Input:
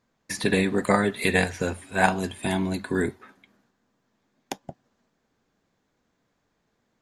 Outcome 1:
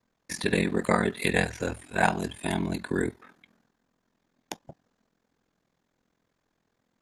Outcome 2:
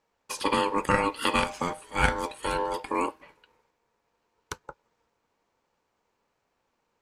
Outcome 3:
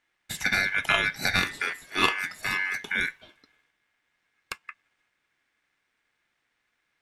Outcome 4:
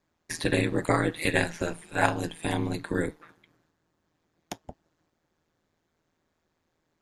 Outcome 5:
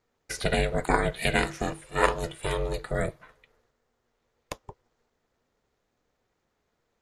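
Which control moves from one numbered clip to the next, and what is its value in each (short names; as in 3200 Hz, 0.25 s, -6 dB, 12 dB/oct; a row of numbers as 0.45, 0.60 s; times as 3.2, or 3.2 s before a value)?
ring modulator, frequency: 21, 700, 1900, 81, 240 Hz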